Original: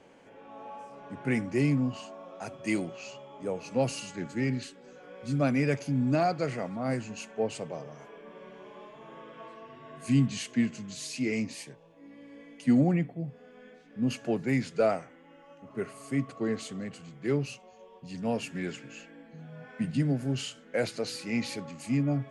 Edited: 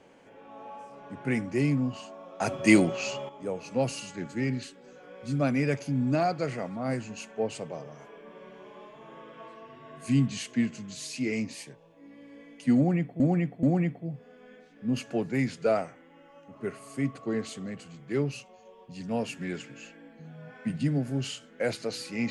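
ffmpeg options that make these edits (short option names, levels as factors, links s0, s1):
-filter_complex "[0:a]asplit=5[s0][s1][s2][s3][s4];[s0]atrim=end=2.402[s5];[s1]atrim=start=2.398:end=3.292,asetpts=PTS-STARTPTS,volume=3.35[s6];[s2]atrim=start=3.288:end=13.202[s7];[s3]atrim=start=12.768:end=13.202[s8];[s4]atrim=start=12.768[s9];[s5][s6]acrossfade=d=0.004:c1=hsin:c2=hsin[s10];[s10][s7]acrossfade=d=0.004:c1=hsin:c2=hsin[s11];[s11][s8]acrossfade=d=0.004:c1=hsin:c2=hsin[s12];[s12][s9]acrossfade=d=0.004:c1=hsin:c2=hsin"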